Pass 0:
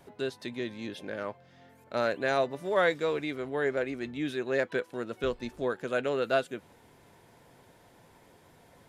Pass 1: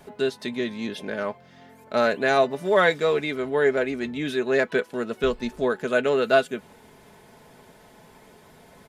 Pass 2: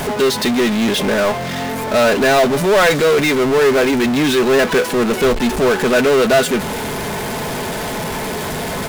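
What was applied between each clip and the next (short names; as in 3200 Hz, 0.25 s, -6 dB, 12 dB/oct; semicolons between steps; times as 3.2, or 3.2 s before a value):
comb 4.7 ms, depth 46%; gain +6.5 dB
power-law curve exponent 0.35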